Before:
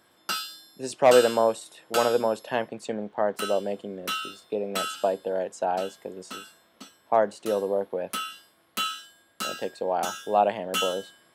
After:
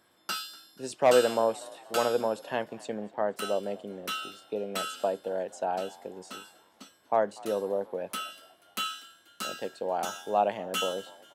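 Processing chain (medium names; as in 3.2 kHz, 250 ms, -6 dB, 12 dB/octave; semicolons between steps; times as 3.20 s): frequency-shifting echo 242 ms, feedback 54%, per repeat +53 Hz, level -22.5 dB; trim -4 dB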